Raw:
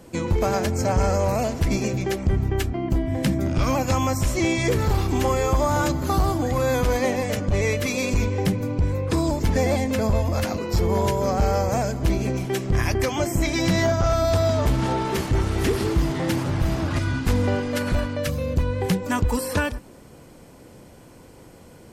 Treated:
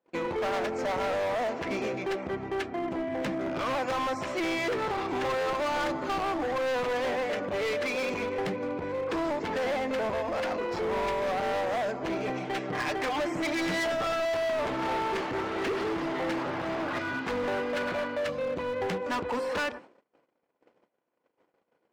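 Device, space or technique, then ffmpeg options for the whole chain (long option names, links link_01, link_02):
walkie-talkie: -filter_complex "[0:a]asettb=1/sr,asplit=3[link_01][link_02][link_03];[link_01]atrim=end=12.154[link_04];[link_02]atrim=start=12.15:end=14.2,asetpts=PTS-STARTPTS,afade=type=in:duration=0.004:curve=qsin,afade=type=out:start_time=2.046:duration=0.004:curve=qsin,aecho=1:1:6.6:0.71,atrim=end_sample=90405[link_05];[link_03]atrim=start=14.196[link_06];[link_04][link_05]acrossfade=duration=0.004:curve1=hsin:curve2=qsin[link_07];[link_07][link_06]acrossfade=duration=0.004:curve1=qsin:curve2=hsin,highpass=420,lowpass=2500,asoftclip=type=hard:threshold=-28.5dB,agate=range=-32dB:threshold=-48dB:ratio=16:detection=peak,volume=1.5dB"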